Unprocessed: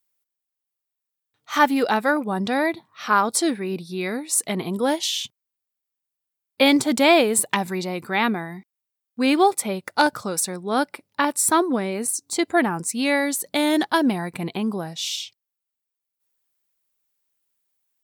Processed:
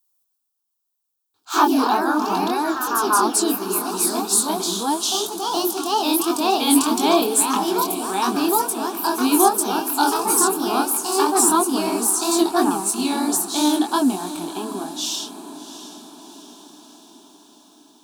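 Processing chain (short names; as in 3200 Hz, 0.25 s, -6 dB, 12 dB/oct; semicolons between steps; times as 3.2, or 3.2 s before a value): tone controls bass -4 dB, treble +3 dB; in parallel at 0 dB: limiter -11 dBFS, peak gain reduction 7 dB; on the sum: echoes that change speed 0.149 s, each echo +2 st, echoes 3; chorus 3 Hz, delay 20 ms, depth 6.4 ms; fixed phaser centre 540 Hz, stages 6; on a send: diffused feedback echo 0.708 s, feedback 56%, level -13.5 dB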